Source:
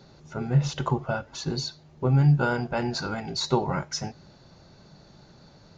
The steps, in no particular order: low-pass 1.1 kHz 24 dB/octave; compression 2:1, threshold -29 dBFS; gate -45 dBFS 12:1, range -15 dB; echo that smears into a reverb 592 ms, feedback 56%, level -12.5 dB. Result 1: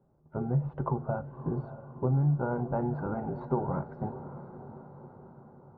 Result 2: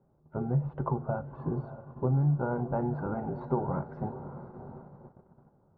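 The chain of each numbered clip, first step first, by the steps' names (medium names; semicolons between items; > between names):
low-pass > compression > gate > echo that smears into a reverb; low-pass > compression > echo that smears into a reverb > gate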